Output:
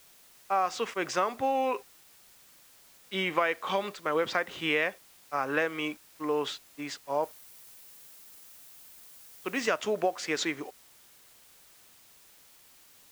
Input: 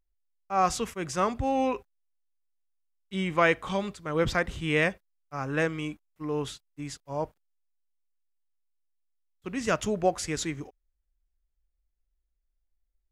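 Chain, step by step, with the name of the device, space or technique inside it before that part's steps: baby monitor (BPF 420–4500 Hz; compressor, threshold -31 dBFS, peak gain reduction 13 dB; white noise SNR 24 dB); 7.23–9.67 high shelf 8000 Hz +8 dB; gain +7 dB

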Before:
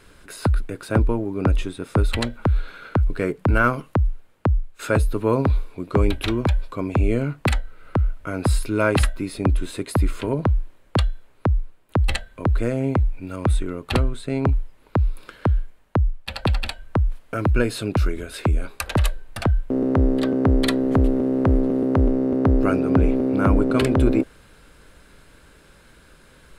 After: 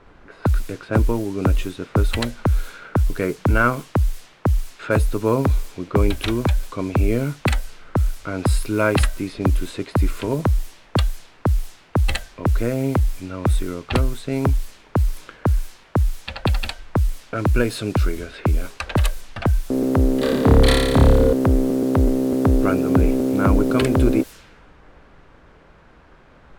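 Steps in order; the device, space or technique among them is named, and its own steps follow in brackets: 20.18–21.33 flutter echo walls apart 4.9 m, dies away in 1.3 s; cassette deck with a dynamic noise filter (white noise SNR 24 dB; low-pass opened by the level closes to 1100 Hz, open at -18 dBFS); gain +1 dB

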